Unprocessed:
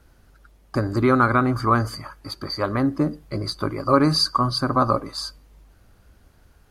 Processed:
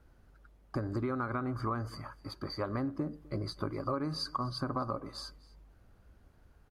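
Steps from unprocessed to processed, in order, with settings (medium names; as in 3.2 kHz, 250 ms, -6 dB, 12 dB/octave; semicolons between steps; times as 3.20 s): treble shelf 2.5 kHz -9 dB; compression 10:1, threshold -24 dBFS, peak gain reduction 12.5 dB; delay 254 ms -22.5 dB; trim -6.5 dB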